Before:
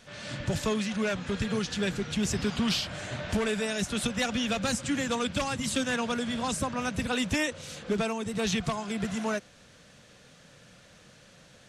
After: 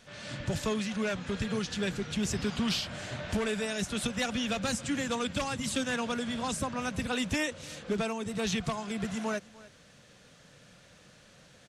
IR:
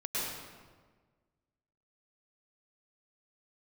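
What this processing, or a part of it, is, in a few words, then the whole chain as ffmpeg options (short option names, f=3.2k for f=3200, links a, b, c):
ducked delay: -filter_complex "[0:a]asplit=3[a][b][c];[b]adelay=299,volume=-8.5dB[d];[c]apad=whole_len=528403[e];[d][e]sidechaincompress=threshold=-48dB:ratio=3:attack=16:release=585[f];[a][f]amix=inputs=2:normalize=0,volume=-2.5dB"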